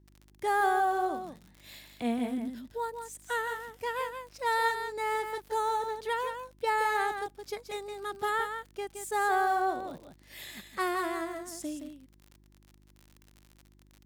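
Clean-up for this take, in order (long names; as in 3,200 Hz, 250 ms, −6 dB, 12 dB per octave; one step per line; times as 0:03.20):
click removal
hum removal 50.4 Hz, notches 7
echo removal 170 ms −7.5 dB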